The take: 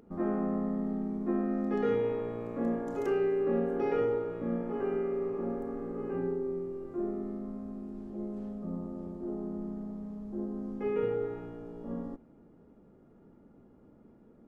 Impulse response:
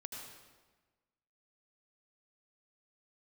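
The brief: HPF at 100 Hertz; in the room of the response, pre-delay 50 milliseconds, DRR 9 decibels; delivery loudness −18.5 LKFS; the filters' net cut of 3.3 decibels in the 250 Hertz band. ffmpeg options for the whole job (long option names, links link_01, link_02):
-filter_complex "[0:a]highpass=100,equalizer=frequency=250:width_type=o:gain=-4,asplit=2[link_01][link_02];[1:a]atrim=start_sample=2205,adelay=50[link_03];[link_02][link_03]afir=irnorm=-1:irlink=0,volume=-6.5dB[link_04];[link_01][link_04]amix=inputs=2:normalize=0,volume=17dB"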